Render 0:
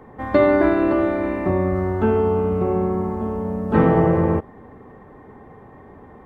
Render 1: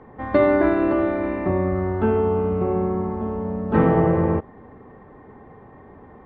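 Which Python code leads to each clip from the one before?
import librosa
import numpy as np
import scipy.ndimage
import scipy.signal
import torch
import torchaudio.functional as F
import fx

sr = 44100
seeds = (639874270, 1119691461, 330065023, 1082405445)

y = scipy.signal.sosfilt(scipy.signal.butter(2, 3700.0, 'lowpass', fs=sr, output='sos'), x)
y = F.gain(torch.from_numpy(y), -1.5).numpy()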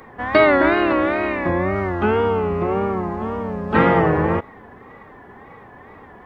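y = fx.wow_flutter(x, sr, seeds[0], rate_hz=2.1, depth_cents=110.0)
y = fx.tilt_shelf(y, sr, db=-8.5, hz=1200.0)
y = F.gain(torch.from_numpy(y), 7.5).numpy()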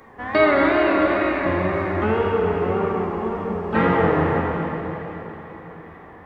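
y = fx.rev_plate(x, sr, seeds[1], rt60_s=4.1, hf_ratio=1.0, predelay_ms=0, drr_db=-0.5)
y = F.gain(torch.from_numpy(y), -5.0).numpy()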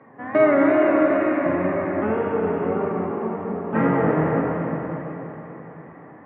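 y = fx.cabinet(x, sr, low_hz=110.0, low_slope=24, high_hz=2300.0, hz=(140.0, 270.0, 600.0), db=(10, 9, 6))
y = y + 10.0 ** (-8.5 / 20.0) * np.pad(y, (int(336 * sr / 1000.0), 0))[:len(y)]
y = F.gain(torch.from_numpy(y), -4.5).numpy()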